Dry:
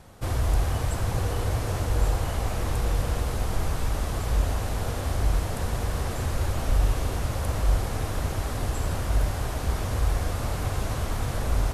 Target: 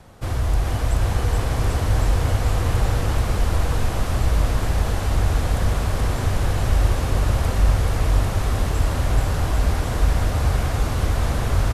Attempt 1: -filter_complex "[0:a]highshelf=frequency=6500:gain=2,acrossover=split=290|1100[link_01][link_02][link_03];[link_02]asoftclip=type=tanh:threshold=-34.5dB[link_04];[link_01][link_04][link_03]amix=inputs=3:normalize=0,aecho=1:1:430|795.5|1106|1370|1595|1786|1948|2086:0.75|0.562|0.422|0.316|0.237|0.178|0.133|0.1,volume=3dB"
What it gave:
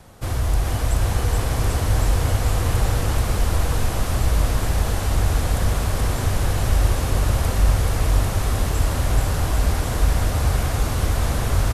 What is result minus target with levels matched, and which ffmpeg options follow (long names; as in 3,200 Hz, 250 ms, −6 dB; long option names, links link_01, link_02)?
8,000 Hz band +4.5 dB
-filter_complex "[0:a]highshelf=frequency=6500:gain=-5.5,acrossover=split=290|1100[link_01][link_02][link_03];[link_02]asoftclip=type=tanh:threshold=-34.5dB[link_04];[link_01][link_04][link_03]amix=inputs=3:normalize=0,aecho=1:1:430|795.5|1106|1370|1595|1786|1948|2086:0.75|0.562|0.422|0.316|0.237|0.178|0.133|0.1,volume=3dB"